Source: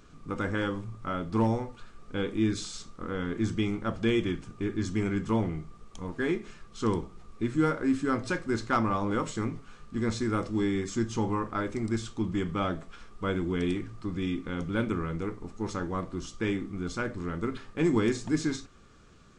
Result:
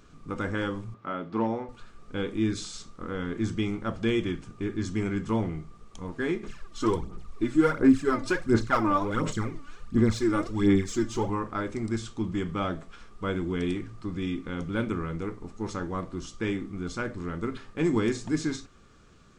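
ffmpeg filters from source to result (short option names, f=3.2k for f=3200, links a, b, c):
-filter_complex "[0:a]asettb=1/sr,asplit=3[a][b][c];[a]atrim=end=0.944[d];[b]atrim=start=0.94:end=1.69,asetpts=PTS-STARTPTS,afade=t=in:d=0.004:c=qsin,afade=t=out:st=0.746:d=0.004:c=qsin,highpass=200,lowpass=3.2k[e];[c]atrim=start=1.686[f];[d][e]acrossfade=d=0.004:c1=hsin:c2=qsin[g];[g][f]acrossfade=d=0.004:c1=qsin:c2=hsin,asettb=1/sr,asplit=3[h][i][j];[h]atrim=end=6.434[k];[i]atrim=start=6.43:end=11.3,asetpts=PTS-STARTPTS,afade=t=in:d=0.004:c=qsin,afade=t=out:st=4.866:d=0.004:c=qsin,aphaser=in_gain=1:out_gain=1:delay=3.5:decay=0.65:speed=1.4:type=sinusoidal[l];[j]atrim=start=11.296[m];[k][l]acrossfade=d=0.004:c1=hsin:c2=qsin[n];[n][m]acrossfade=d=0.004:c1=qsin:c2=hsin"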